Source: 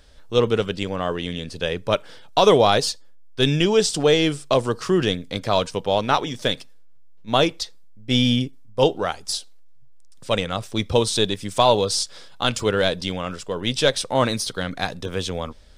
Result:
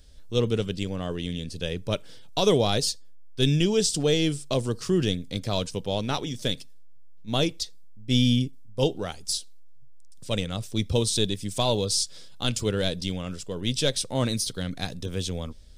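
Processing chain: peaking EQ 1.1 kHz -14 dB 2.8 oct; trim +1 dB

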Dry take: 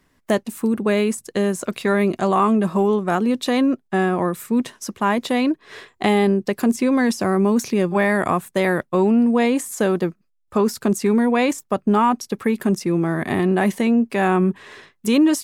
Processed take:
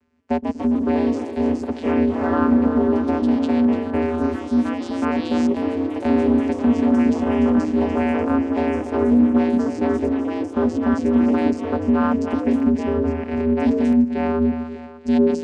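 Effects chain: on a send: two-band feedback delay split 380 Hz, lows 119 ms, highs 294 ms, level -10.5 dB; on the sum: painted sound rise, 5.01–5.47 s, 1.5–6.2 kHz -29 dBFS; vocoder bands 8, square 80.4 Hz; ever faster or slower copies 176 ms, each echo +2 st, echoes 3, each echo -6 dB

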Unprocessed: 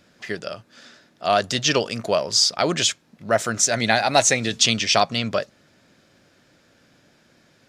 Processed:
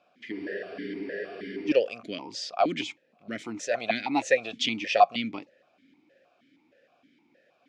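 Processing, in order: spectral freeze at 0.35 s, 1.33 s; stepped vowel filter 6.4 Hz; trim +5 dB

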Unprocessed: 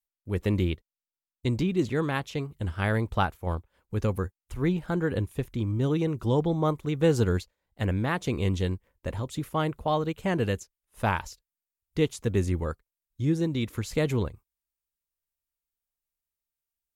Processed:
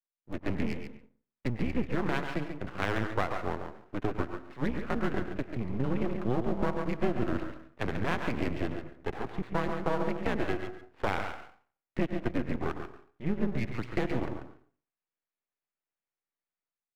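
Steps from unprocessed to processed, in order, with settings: mistuned SSB -120 Hz 250–2600 Hz; on a send at -12 dB: reverberation RT60 0.45 s, pre-delay 88 ms; on the sum: half-wave rectifier; level rider gain up to 8 dB; in parallel at -7 dB: Schmitt trigger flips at -28.5 dBFS; on the sum: compression 3:1, threshold -23 dBFS, peak gain reduction 9 dB; delay 139 ms -8 dB; trim -2 dB

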